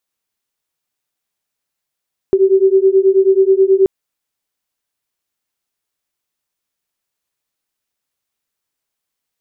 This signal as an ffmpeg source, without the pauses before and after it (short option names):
-f lavfi -i "aevalsrc='0.282*(sin(2*PI*380*t)+sin(2*PI*389.3*t))':d=1.53:s=44100"